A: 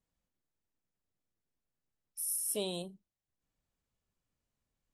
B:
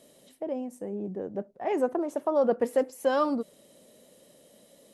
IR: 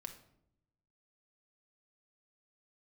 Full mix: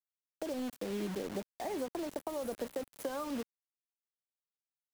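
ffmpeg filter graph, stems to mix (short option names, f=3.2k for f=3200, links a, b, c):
-filter_complex "[0:a]equalizer=f=590:w=6:g=14.5,volume=-10.5dB,asplit=2[a][b];[b]volume=-20.5dB[c];[1:a]highpass=140,adynamicequalizer=threshold=0.0178:dfrequency=1100:dqfactor=0.86:tfrequency=1100:tqfactor=0.86:attack=5:release=100:ratio=0.375:range=1.5:mode=boostabove:tftype=bell,acompressor=threshold=-31dB:ratio=6,volume=-1dB,asplit=4[d][e][f][g];[e]volume=-21dB[h];[f]volume=-21.5dB[i];[g]apad=whole_len=217565[j];[a][j]sidechaincompress=threshold=-39dB:ratio=12:attack=16:release=847[k];[2:a]atrim=start_sample=2205[l];[h][l]afir=irnorm=-1:irlink=0[m];[c][i]amix=inputs=2:normalize=0,aecho=0:1:374|748|1122|1496|1870|2244|2618:1|0.48|0.23|0.111|0.0531|0.0255|0.0122[n];[k][d][m][n]amix=inputs=4:normalize=0,acrusher=bits=6:mix=0:aa=0.000001,acrossover=split=350[o][p];[p]acompressor=threshold=-41dB:ratio=2[q];[o][q]amix=inputs=2:normalize=0"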